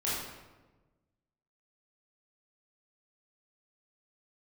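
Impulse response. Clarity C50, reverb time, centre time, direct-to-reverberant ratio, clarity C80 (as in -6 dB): -1.0 dB, 1.2 s, 80 ms, -9.0 dB, 2.5 dB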